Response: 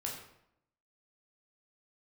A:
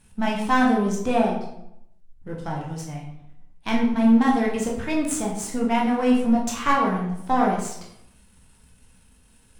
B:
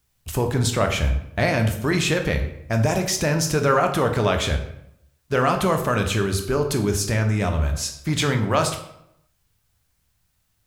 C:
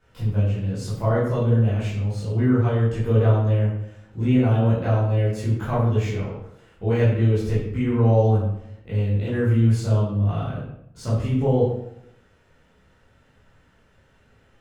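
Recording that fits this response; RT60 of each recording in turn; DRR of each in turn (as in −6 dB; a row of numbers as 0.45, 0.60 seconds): A; 0.75, 0.75, 0.75 seconds; −2.0, 4.5, −11.0 decibels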